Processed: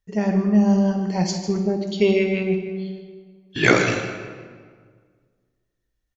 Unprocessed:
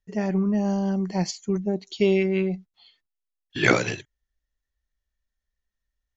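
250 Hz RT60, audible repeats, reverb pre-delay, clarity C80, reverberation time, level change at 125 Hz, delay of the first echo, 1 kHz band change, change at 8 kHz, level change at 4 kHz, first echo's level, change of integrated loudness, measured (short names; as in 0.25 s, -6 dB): 1.9 s, 1, 3 ms, 6.5 dB, 1.8 s, +4.0 dB, 0.154 s, +4.0 dB, n/a, +4.0 dB, -12.0 dB, +3.5 dB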